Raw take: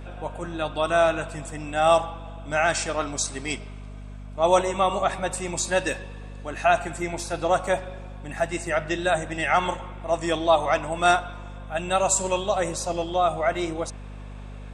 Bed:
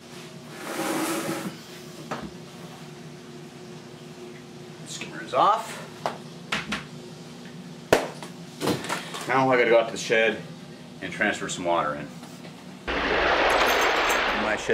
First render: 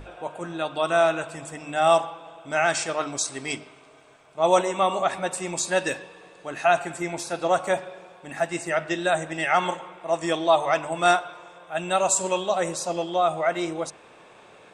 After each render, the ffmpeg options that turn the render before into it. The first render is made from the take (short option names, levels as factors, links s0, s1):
-af "bandreject=f=50:t=h:w=6,bandreject=f=100:t=h:w=6,bandreject=f=150:t=h:w=6,bandreject=f=200:t=h:w=6,bandreject=f=250:t=h:w=6,bandreject=f=300:t=h:w=6"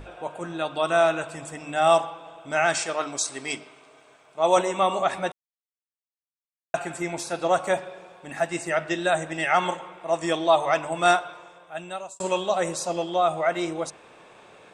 -filter_complex "[0:a]asettb=1/sr,asplit=3[s0][s1][s2];[s0]atrim=end=2.784[s3];[s1]atrim=start=2.78:end=4.57,asetpts=PTS-STARTPTS,afade=t=in:d=0.004:c=qsin,afade=t=out:st=1.786:d=0.004:c=qsin,lowshelf=f=140:g=-11.5[s4];[s2]atrim=start=4.566[s5];[s3][s4]acrossfade=d=0.004:c1=hsin:c2=qsin[s6];[s6][s5]acrossfade=d=0.004:c1=qsin:c2=hsin,asplit=4[s7][s8][s9][s10];[s7]atrim=end=5.32,asetpts=PTS-STARTPTS,afade=t=out:st=5.316:d=0.004:c=hsin[s11];[s8]atrim=start=5.32:end=6.74,asetpts=PTS-STARTPTS,volume=0[s12];[s9]atrim=start=6.74:end=12.2,asetpts=PTS-STARTPTS,afade=t=in:d=0.004:c=hsin,afade=t=out:st=4.57:d=0.89[s13];[s10]atrim=start=12.2,asetpts=PTS-STARTPTS,afade=t=in:d=0.004:c=hsin[s14];[s11][s12][s13][s14]concat=n=4:v=0:a=1"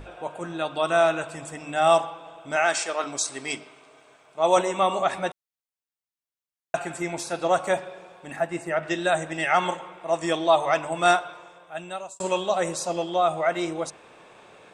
-filter_complex "[0:a]asettb=1/sr,asplit=3[s0][s1][s2];[s0]atrim=end=2.564[s3];[s1]atrim=start=2.56:end=3.04,asetpts=PTS-STARTPTS,afade=t=in:d=0.004:c=qsin,afade=t=out:st=0.476:d=0.004:c=qsin,highpass=290[s4];[s2]atrim=start=3.036[s5];[s3][s4]acrossfade=d=0.004:c1=hsin:c2=qsin[s6];[s6][s5]acrossfade=d=0.004:c1=qsin:c2=hsin,asettb=1/sr,asplit=3[s7][s8][s9];[s7]atrim=end=8.364[s10];[s8]atrim=start=8.36:end=8.83,asetpts=PTS-STARTPTS,afade=t=in:d=0.004:c=qsin,afade=t=out:st=0.466:d=0.004:c=qsin,equalizer=f=5600:w=0.57:g=-11[s11];[s9]atrim=start=8.826[s12];[s10][s11]acrossfade=d=0.004:c1=hsin:c2=qsin[s13];[s13][s12]acrossfade=d=0.004:c1=qsin:c2=hsin"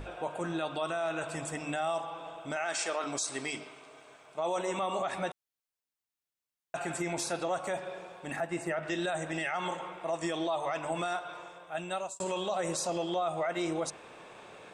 -af "acompressor=threshold=0.0501:ratio=4,alimiter=limit=0.0668:level=0:latency=1:release=18"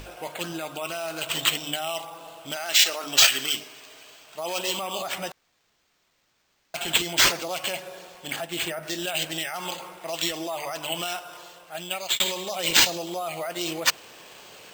-af "aexciter=amount=9.6:drive=5.3:freq=5000,acrusher=samples=4:mix=1:aa=0.000001"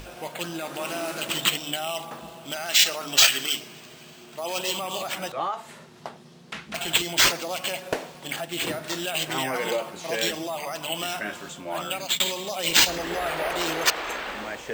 -filter_complex "[1:a]volume=0.355[s0];[0:a][s0]amix=inputs=2:normalize=0"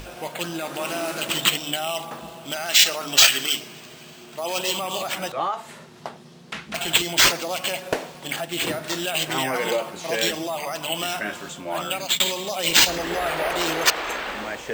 -af "volume=1.41,alimiter=limit=0.708:level=0:latency=1"